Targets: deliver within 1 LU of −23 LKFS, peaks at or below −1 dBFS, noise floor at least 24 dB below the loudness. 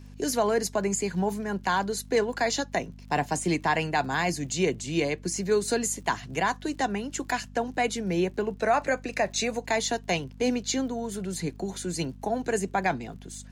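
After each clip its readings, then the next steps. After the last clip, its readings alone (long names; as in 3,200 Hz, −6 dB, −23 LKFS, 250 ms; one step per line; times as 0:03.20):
crackle rate 56 per second; mains hum 50 Hz; hum harmonics up to 250 Hz; level of the hum −44 dBFS; integrated loudness −28.0 LKFS; sample peak −13.0 dBFS; target loudness −23.0 LKFS
→ click removal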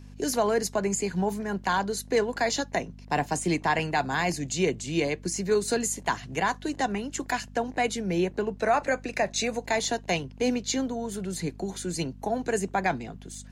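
crackle rate 0.22 per second; mains hum 50 Hz; hum harmonics up to 250 Hz; level of the hum −44 dBFS
→ hum removal 50 Hz, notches 5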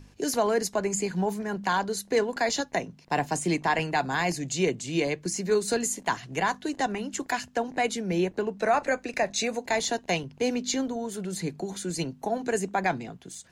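mains hum none found; integrated loudness −28.0 LKFS; sample peak −13.0 dBFS; target loudness −23.0 LKFS
→ level +5 dB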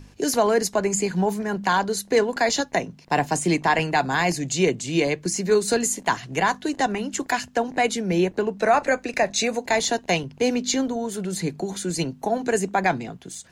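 integrated loudness −23.0 LKFS; sample peak −8.0 dBFS; background noise floor −49 dBFS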